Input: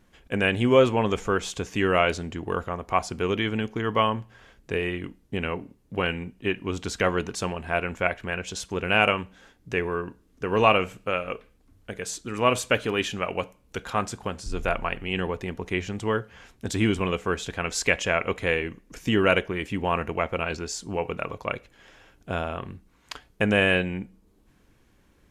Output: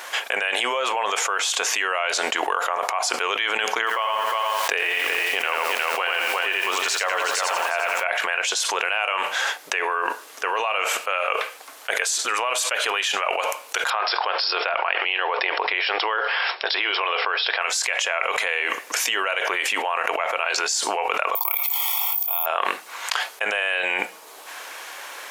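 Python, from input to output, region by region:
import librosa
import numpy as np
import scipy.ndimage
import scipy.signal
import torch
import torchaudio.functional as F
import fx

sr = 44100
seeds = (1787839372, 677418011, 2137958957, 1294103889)

y = fx.chain(x, sr, fx.echo_single(ms=359, db=-10.0),
    fx.echo_crushed(ms=86, feedback_pct=35, bits=8, wet_db=-3.0), at=(3.78, 8.04))
y = fx.chain(y, sr, fx.over_compress(threshold_db=-29.0, ratio=-1.0),
    fx.brickwall_bandpass(low_hz=300.0, high_hz=5500.0), at=(13.9, 17.62))
y = fx.chain(y, sr, fx.fixed_phaser(hz=420.0, stages=6),
    fx.comb(ms=0.9, depth=0.89),
    fx.resample_bad(factor=3, down='filtered', up='zero_stuff'), at=(21.35, 22.46))
y = scipy.signal.sosfilt(scipy.signal.butter(4, 660.0, 'highpass', fs=sr, output='sos'), y)
y = fx.env_flatten(y, sr, amount_pct=100)
y = y * librosa.db_to_amplitude(-7.5)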